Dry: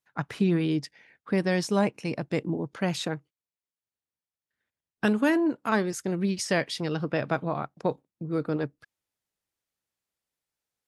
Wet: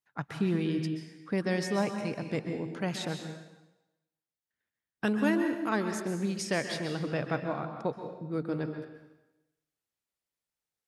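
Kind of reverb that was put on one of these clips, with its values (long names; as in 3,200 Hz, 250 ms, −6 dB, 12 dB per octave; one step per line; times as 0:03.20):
dense smooth reverb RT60 0.97 s, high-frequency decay 0.95×, pre-delay 115 ms, DRR 5.5 dB
level −5 dB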